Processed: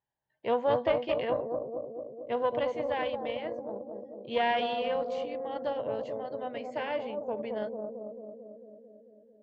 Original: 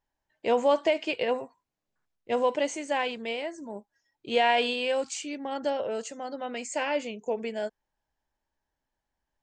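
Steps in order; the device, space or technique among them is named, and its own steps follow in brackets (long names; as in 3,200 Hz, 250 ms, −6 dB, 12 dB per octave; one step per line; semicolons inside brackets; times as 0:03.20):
analogue delay pedal into a guitar amplifier (bucket-brigade delay 222 ms, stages 1,024, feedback 72%, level −3 dB; tube saturation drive 13 dB, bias 0.7; loudspeaker in its box 86–3,500 Hz, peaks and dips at 130 Hz +8 dB, 280 Hz −8 dB, 1,300 Hz −5 dB, 2,500 Hz −7 dB)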